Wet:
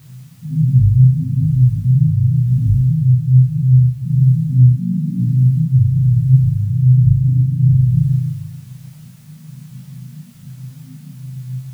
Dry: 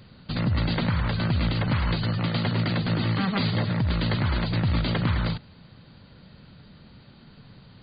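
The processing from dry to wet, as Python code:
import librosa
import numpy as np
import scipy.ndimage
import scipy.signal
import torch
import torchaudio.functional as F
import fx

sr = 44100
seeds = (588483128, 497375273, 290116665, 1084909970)

y = scipy.signal.sosfilt(scipy.signal.butter(4, 3400.0, 'lowpass', fs=sr, output='sos'), x)
y = fx.hum_notches(y, sr, base_hz=50, count=2)
y = fx.spec_topn(y, sr, count=1)
y = scipy.signal.sosfilt(scipy.signal.butter(2, 46.0, 'highpass', fs=sr, output='sos'), y)
y = fx.room_flutter(y, sr, wall_m=4.3, rt60_s=1.1)
y = fx.stretch_grains(y, sr, factor=1.5, grain_ms=41.0)
y = fx.graphic_eq(y, sr, hz=(125, 250, 500, 1000, 2000), db=(4, 6, 4, -10, -6))
y = fx.quant_dither(y, sr, seeds[0], bits=10, dither='triangular')
y = fx.rider(y, sr, range_db=10, speed_s=0.5)
y = fx.peak_eq(y, sr, hz=120.0, db=11.0, octaves=0.6)
y = fx.detune_double(y, sr, cents=39)
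y = y * librosa.db_to_amplitude(7.5)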